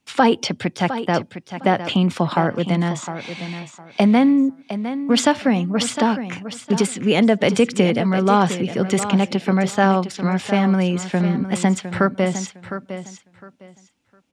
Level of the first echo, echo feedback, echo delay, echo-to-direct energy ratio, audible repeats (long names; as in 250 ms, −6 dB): −11.0 dB, 21%, 708 ms, −11.0 dB, 2